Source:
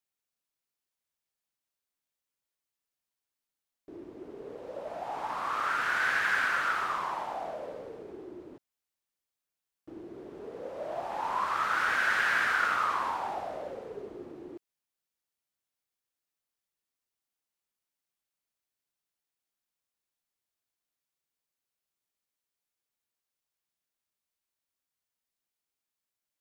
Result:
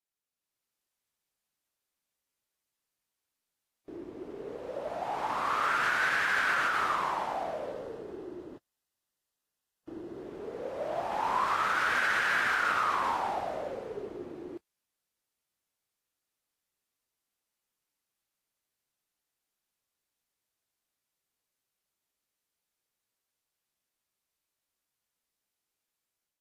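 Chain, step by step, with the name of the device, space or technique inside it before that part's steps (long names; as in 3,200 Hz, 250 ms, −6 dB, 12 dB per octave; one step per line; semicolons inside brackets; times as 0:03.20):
0:07.71–0:10.22: notch filter 2,300 Hz, Q 8.8
low-bitrate web radio (automatic gain control gain up to 7 dB; brickwall limiter −15 dBFS, peak gain reduction 5.5 dB; level −4.5 dB; AAC 48 kbit/s 32,000 Hz)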